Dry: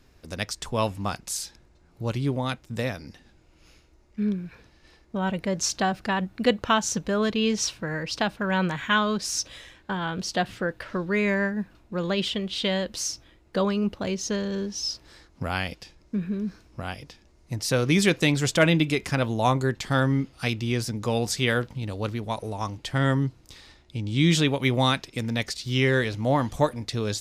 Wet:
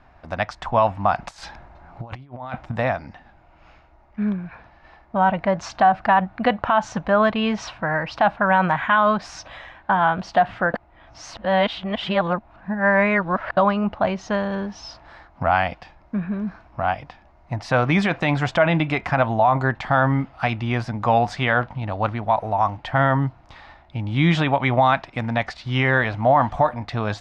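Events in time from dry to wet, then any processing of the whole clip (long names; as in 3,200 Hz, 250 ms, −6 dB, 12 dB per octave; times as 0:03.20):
0:01.18–0:02.72: compressor whose output falls as the input rises −35 dBFS, ratio −0.5
0:10.74–0:13.57: reverse
whole clip: low-pass filter 1,600 Hz 12 dB per octave; low shelf with overshoot 560 Hz −7.5 dB, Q 3; boost into a limiter +17.5 dB; level −6 dB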